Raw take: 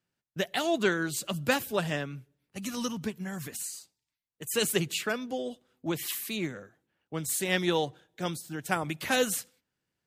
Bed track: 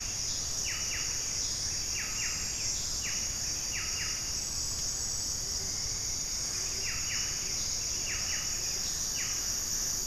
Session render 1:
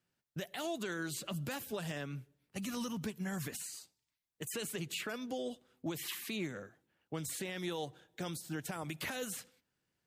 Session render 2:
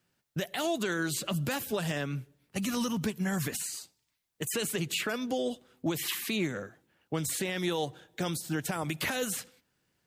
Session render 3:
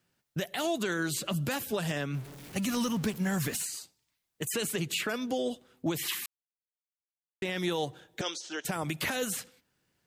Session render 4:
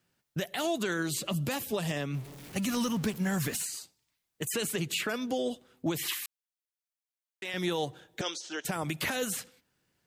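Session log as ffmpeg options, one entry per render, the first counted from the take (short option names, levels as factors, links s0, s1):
-filter_complex "[0:a]acrossover=split=3700|7900[s0][s1][s2];[s0]acompressor=threshold=0.0178:ratio=4[s3];[s1]acompressor=threshold=0.00316:ratio=4[s4];[s2]acompressor=threshold=0.00398:ratio=4[s5];[s3][s4][s5]amix=inputs=3:normalize=0,alimiter=level_in=1.78:limit=0.0631:level=0:latency=1:release=23,volume=0.562"
-af "volume=2.51"
-filter_complex "[0:a]asettb=1/sr,asplit=3[s0][s1][s2];[s0]atrim=end=2.144[s3];[s1]atrim=start=2.14:end=3.65,asetpts=PTS-STARTPTS,afade=t=in:d=0.004:c=qsin,afade=t=out:st=1.506:d=0.004:c=qsin,aeval=exprs='val(0)+0.5*0.00841*sgn(val(0))':c=same[s4];[s2]atrim=start=3.646[s5];[s3][s4]acrossfade=d=0.004:c1=hsin:c2=qsin[s6];[s6][s5]acrossfade=d=0.004:c1=qsin:c2=hsin,asettb=1/sr,asplit=3[s7][s8][s9];[s7]atrim=end=8.214[s10];[s8]atrim=start=8.21:end=8.65,asetpts=PTS-STARTPTS,afade=t=in:d=0.004:c=qsin,afade=t=out:st=0.436:d=0.004:c=qsin,highpass=f=380:w=0.5412,highpass=f=380:w=1.3066,equalizer=f=750:t=q:w=4:g=-4,equalizer=f=3100:t=q:w=4:g=7,equalizer=f=6100:t=q:w=4:g=8,lowpass=f=6600:w=0.5412,lowpass=f=6600:w=1.3066[s11];[s9]atrim=start=8.646[s12];[s10][s11]acrossfade=d=0.004:c1=hsin:c2=qsin[s13];[s13][s12]acrossfade=d=0.004:c1=qsin:c2=hsin,asplit=3[s14][s15][s16];[s14]atrim=end=6.26,asetpts=PTS-STARTPTS,afade=t=out:st=6.256:d=0.004:c=hsin[s17];[s15]atrim=start=6.26:end=7.42,asetpts=PTS-STARTPTS,volume=0[s18];[s16]atrim=start=7.42,asetpts=PTS-STARTPTS,afade=t=in:d=0.004:c=hsin[s19];[s17][s18][s19]concat=n=3:v=0:a=1"
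-filter_complex "[0:a]asettb=1/sr,asplit=3[s0][s1][s2];[s0]atrim=end=1.024[s3];[s1]atrim=start=1.02:end=2.36,asetpts=PTS-STARTPTS,afade=t=in:d=0.004:c=qsin,afade=t=out:st=1.336:d=0.004:c=qsin,equalizer=f=1500:t=o:w=0.26:g=-7.5[s4];[s2]atrim=start=2.356[s5];[s3][s4]acrossfade=d=0.004:c1=hsin:c2=qsin[s6];[s6][s5]acrossfade=d=0.004:c1=qsin:c2=hsin,asettb=1/sr,asplit=3[s7][s8][s9];[s7]atrim=end=6.134[s10];[s8]atrim=start=6.13:end=7.54,asetpts=PTS-STARTPTS,afade=t=in:d=0.004:c=qsin,afade=t=out:st=1.406:d=0.004:c=qsin,highpass=f=1100:p=1[s11];[s9]atrim=start=7.536[s12];[s10][s11]acrossfade=d=0.004:c1=hsin:c2=qsin[s13];[s13][s12]acrossfade=d=0.004:c1=qsin:c2=hsin"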